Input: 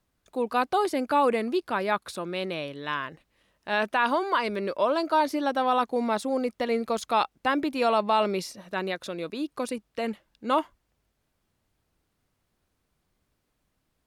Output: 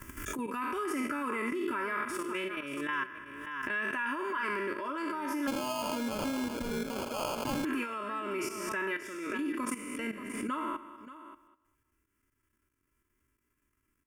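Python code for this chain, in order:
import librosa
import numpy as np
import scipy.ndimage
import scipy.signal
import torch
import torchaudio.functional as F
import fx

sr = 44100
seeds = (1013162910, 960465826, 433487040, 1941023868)

y = fx.spec_trails(x, sr, decay_s=0.87)
y = y + 0.8 * np.pad(y, (int(3.0 * sr / 1000.0), 0))[:len(y)]
y = fx.level_steps(y, sr, step_db=14)
y = fx.low_shelf(y, sr, hz=75.0, db=-9.5)
y = fx.fixed_phaser(y, sr, hz=1700.0, stages=4)
y = y + 10.0 ** (-14.5 / 20.0) * np.pad(y, (int(581 * sr / 1000.0), 0))[:len(y)]
y = fx.sample_hold(y, sr, seeds[0], rate_hz=1900.0, jitter_pct=0, at=(5.47, 7.65))
y = fx.pre_swell(y, sr, db_per_s=32.0)
y = y * librosa.db_to_amplitude(-1.5)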